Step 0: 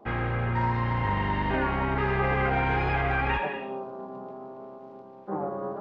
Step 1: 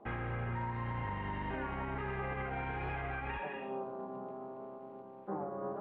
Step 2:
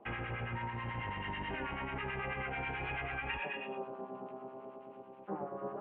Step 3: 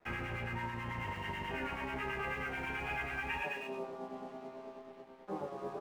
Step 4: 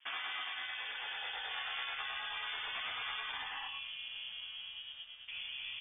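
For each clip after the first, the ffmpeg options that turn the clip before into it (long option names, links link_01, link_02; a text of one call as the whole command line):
ffmpeg -i in.wav -af "lowpass=frequency=3300:width=0.5412,lowpass=frequency=3300:width=1.3066,alimiter=level_in=1.5dB:limit=-24dB:level=0:latency=1:release=365,volume=-1.5dB,volume=-4dB" out.wav
ffmpeg -i in.wav -filter_complex "[0:a]lowpass=frequency=2800:width_type=q:width=3.5,lowshelf=frequency=150:gain=-3,acrossover=split=970[link_01][link_02];[link_01]aeval=exprs='val(0)*(1-0.7/2+0.7/2*cos(2*PI*9.2*n/s))':channel_layout=same[link_03];[link_02]aeval=exprs='val(0)*(1-0.7/2-0.7/2*cos(2*PI*9.2*n/s))':channel_layout=same[link_04];[link_03][link_04]amix=inputs=2:normalize=0,volume=1.5dB" out.wav
ffmpeg -i in.wav -filter_complex "[0:a]aeval=exprs='sgn(val(0))*max(abs(val(0))-0.00133,0)':channel_layout=same,asplit=2[link_01][link_02];[link_02]aecho=0:1:12|35:0.668|0.473[link_03];[link_01][link_03]amix=inputs=2:normalize=0,volume=-1dB" out.wav
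ffmpeg -i in.wav -af "afftfilt=real='re*lt(hypot(re,im),0.0355)':imag='im*lt(hypot(re,im),0.0355)':win_size=1024:overlap=0.75,lowpass=frequency=3100:width_type=q:width=0.5098,lowpass=frequency=3100:width_type=q:width=0.6013,lowpass=frequency=3100:width_type=q:width=0.9,lowpass=frequency=3100:width_type=q:width=2.563,afreqshift=-3600,asubboost=boost=7:cutoff=130,volume=3.5dB" out.wav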